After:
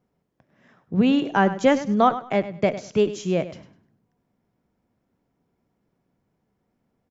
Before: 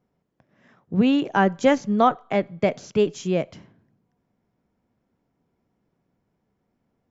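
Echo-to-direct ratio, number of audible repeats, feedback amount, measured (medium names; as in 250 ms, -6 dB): -13.5 dB, 2, 23%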